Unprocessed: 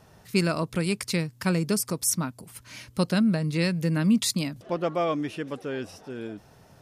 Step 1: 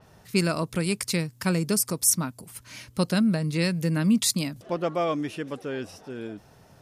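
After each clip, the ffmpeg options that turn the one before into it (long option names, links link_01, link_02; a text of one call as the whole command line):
ffmpeg -i in.wav -af "adynamicequalizer=threshold=0.00891:dfrequency=5500:dqfactor=0.7:tfrequency=5500:tqfactor=0.7:attack=5:release=100:ratio=0.375:range=2.5:mode=boostabove:tftype=highshelf" out.wav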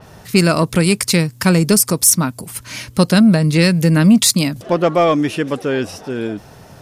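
ffmpeg -i in.wav -filter_complex "[0:a]asplit=2[link_01][link_02];[link_02]alimiter=limit=-17dB:level=0:latency=1:release=282,volume=-1dB[link_03];[link_01][link_03]amix=inputs=2:normalize=0,asoftclip=type=tanh:threshold=-9dB,volume=8dB" out.wav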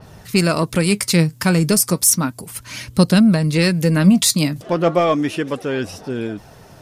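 ffmpeg -i in.wav -af "flanger=delay=0.2:depth=6.5:regen=71:speed=0.33:shape=sinusoidal,volume=2dB" out.wav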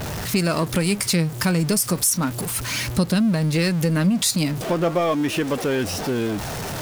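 ffmpeg -i in.wav -af "aeval=exprs='val(0)+0.5*0.0596*sgn(val(0))':channel_layout=same,acompressor=threshold=-20dB:ratio=2.5" out.wav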